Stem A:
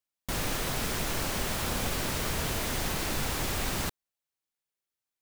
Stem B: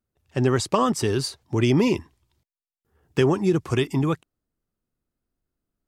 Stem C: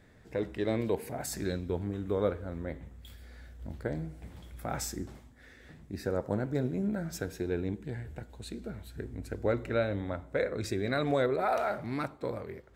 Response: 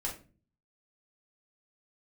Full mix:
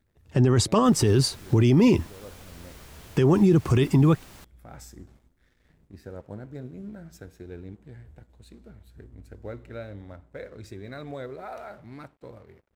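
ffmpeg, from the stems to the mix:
-filter_complex "[0:a]adelay=550,volume=-17dB[link_01];[1:a]lowshelf=frequency=310:gain=9.5,volume=3dB,asplit=2[link_02][link_03];[2:a]lowshelf=frequency=110:gain=9.5,aeval=exprs='sgn(val(0))*max(abs(val(0))-0.00237,0)':channel_layout=same,volume=-9.5dB[link_04];[link_03]apad=whole_len=562700[link_05];[link_04][link_05]sidechaincompress=threshold=-19dB:ratio=8:attack=16:release=942[link_06];[link_01][link_02][link_06]amix=inputs=3:normalize=0,alimiter=limit=-11dB:level=0:latency=1:release=44"

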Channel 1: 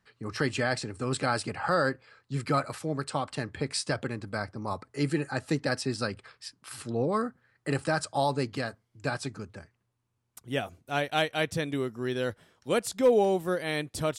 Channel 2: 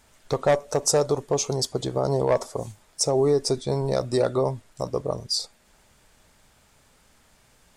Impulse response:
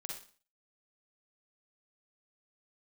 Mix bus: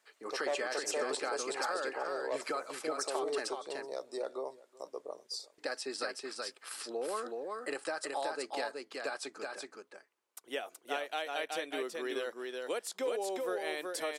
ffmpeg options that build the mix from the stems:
-filter_complex "[0:a]highpass=frequency=370:width=0.5412,highpass=frequency=370:width=1.3066,acompressor=threshold=-33dB:ratio=5,volume=-1dB,asplit=3[link_01][link_02][link_03];[link_01]atrim=end=3.49,asetpts=PTS-STARTPTS,afade=type=out:start_time=3.486:duration=0.004:curve=hsin[link_04];[link_02]atrim=start=3.49:end=5.58,asetpts=PTS-STARTPTS,volume=0[link_05];[link_03]atrim=start=5.58,asetpts=PTS-STARTPTS,afade=type=in:duration=0.004:curve=hsin[link_06];[link_04][link_05][link_06]concat=n=3:v=0:a=1,asplit=2[link_07][link_08];[link_08]volume=-3.5dB[link_09];[1:a]highpass=frequency=340:width=0.5412,highpass=frequency=340:width=1.3066,volume=-15dB,asplit=2[link_10][link_11];[link_11]volume=-21.5dB[link_12];[link_09][link_12]amix=inputs=2:normalize=0,aecho=0:1:375:1[link_13];[link_07][link_10][link_13]amix=inputs=3:normalize=0"

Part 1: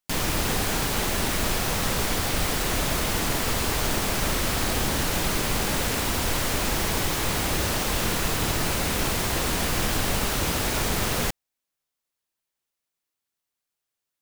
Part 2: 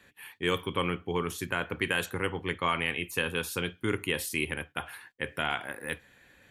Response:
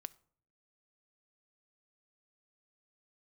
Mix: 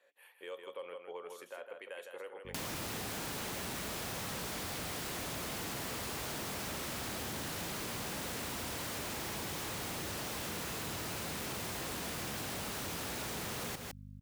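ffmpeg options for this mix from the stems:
-filter_complex "[0:a]aeval=exprs='val(0)+0.00794*(sin(2*PI*50*n/s)+sin(2*PI*2*50*n/s)/2+sin(2*PI*3*50*n/s)/3+sin(2*PI*4*50*n/s)/4+sin(2*PI*5*50*n/s)/5)':channel_layout=same,adelay=2450,volume=-1.5dB,asplit=2[link_01][link_02];[link_02]volume=-12dB[link_03];[1:a]alimiter=limit=-20.5dB:level=0:latency=1:release=307,highpass=frequency=550:width_type=q:width=6.5,volume=-14.5dB,asplit=2[link_04][link_05];[link_05]volume=-6.5dB[link_06];[link_03][link_06]amix=inputs=2:normalize=0,aecho=0:1:158:1[link_07];[link_01][link_04][link_07]amix=inputs=3:normalize=0,highpass=92,asoftclip=type=tanh:threshold=-26dB,acompressor=threshold=-39dB:ratio=6"

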